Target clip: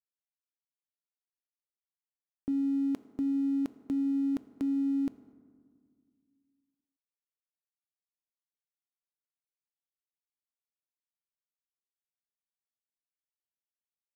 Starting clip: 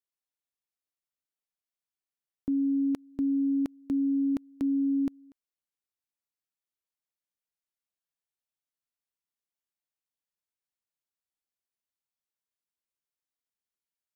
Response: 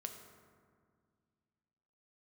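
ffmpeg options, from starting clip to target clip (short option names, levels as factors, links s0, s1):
-filter_complex "[0:a]lowshelf=f=200:g=-3,aeval=exprs='sgn(val(0))*max(abs(val(0))-0.00211,0)':c=same,asplit=2[s0][s1];[1:a]atrim=start_sample=2205[s2];[s1][s2]afir=irnorm=-1:irlink=0,volume=1[s3];[s0][s3]amix=inputs=2:normalize=0,volume=0.562"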